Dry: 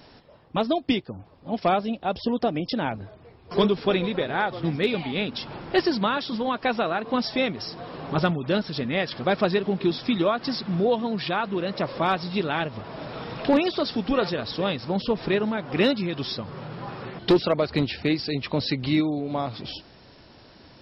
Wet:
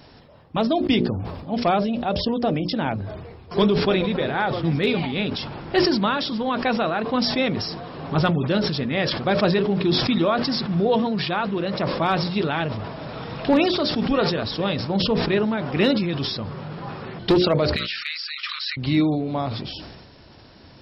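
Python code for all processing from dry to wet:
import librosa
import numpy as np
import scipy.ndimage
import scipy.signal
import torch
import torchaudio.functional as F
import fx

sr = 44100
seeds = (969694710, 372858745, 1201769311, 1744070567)

y = fx.chain(x, sr, fx.steep_highpass(hz=1200.0, slope=96),
    fx.band_squash(depth_pct=100), at=(17.76, 18.77))
y = fx.peak_eq(y, sr, hz=83.0, db=5.0, octaves=2.5)
y = fx.hum_notches(y, sr, base_hz=60, count=10)
y = fx.sustainer(y, sr, db_per_s=39.0)
y = y * librosa.db_to_amplitude(1.0)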